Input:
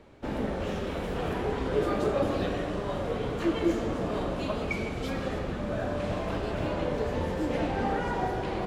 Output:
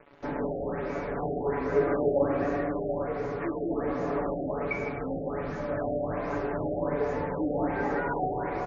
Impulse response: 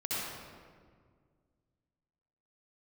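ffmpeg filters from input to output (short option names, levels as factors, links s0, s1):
-filter_complex "[0:a]bandreject=f=60:t=h:w=6,bandreject=f=120:t=h:w=6,bandreject=f=180:t=h:w=6,bandreject=f=240:t=h:w=6,asplit=2[s0][s1];[1:a]atrim=start_sample=2205[s2];[s1][s2]afir=irnorm=-1:irlink=0,volume=0.126[s3];[s0][s3]amix=inputs=2:normalize=0,asoftclip=type=hard:threshold=0.126,asuperstop=centerf=4100:order=8:qfactor=0.87,acrusher=bits=7:mix=0:aa=0.5,aecho=1:1:7:0.69,asettb=1/sr,asplit=3[s4][s5][s6];[s4]atrim=end=3.024[s7];[s5]atrim=start=3.02:end=3.71,asetpts=PTS-STARTPTS,afade=t=in:d=0.004:c=qsin,afade=t=out:st=0.686:d=0.004:c=qsin,acompressor=threshold=0.0447:ratio=2.5[s8];[s6]atrim=start=3.706[s9];[s7][s8]acrossfade=d=0.004:c1=hsin:c2=qsin[s10];[s10][s9]acrossfade=d=0.004:c1=qsin:c2=hsin,lowshelf=f=210:g=-6.5,afftfilt=real='re*lt(b*sr/1024,770*pow(7100/770,0.5+0.5*sin(2*PI*1.3*pts/sr)))':imag='im*lt(b*sr/1024,770*pow(7100/770,0.5+0.5*sin(2*PI*1.3*pts/sr)))':win_size=1024:overlap=0.75"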